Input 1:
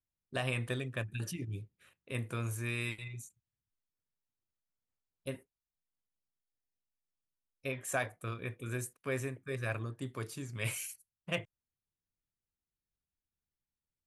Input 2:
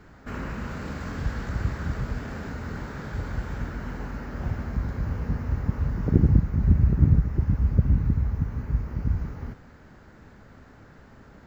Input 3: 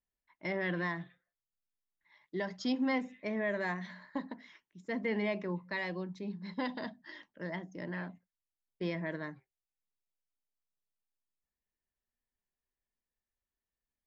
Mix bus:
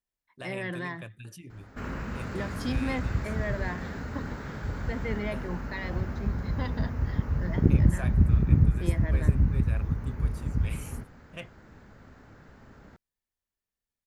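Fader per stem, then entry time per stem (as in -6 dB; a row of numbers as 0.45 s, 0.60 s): -6.5 dB, -2.0 dB, -0.5 dB; 0.05 s, 1.50 s, 0.00 s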